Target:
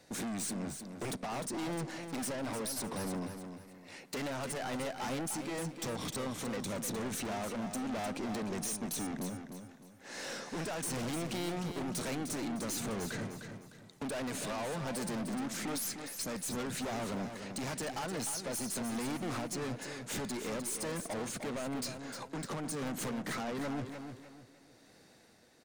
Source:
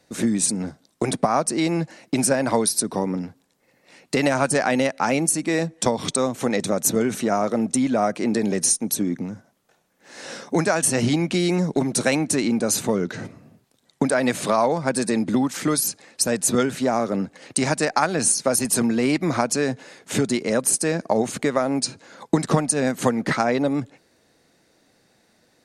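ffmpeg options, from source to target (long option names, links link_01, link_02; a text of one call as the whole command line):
ffmpeg -i in.wav -af "alimiter=limit=-11dB:level=0:latency=1:release=456,tremolo=f=1:d=0.4,aeval=exprs='(tanh(63.1*val(0)+0.1)-tanh(0.1))/63.1':channel_layout=same,aecho=1:1:304|608|912|1216:0.398|0.131|0.0434|0.0143" out.wav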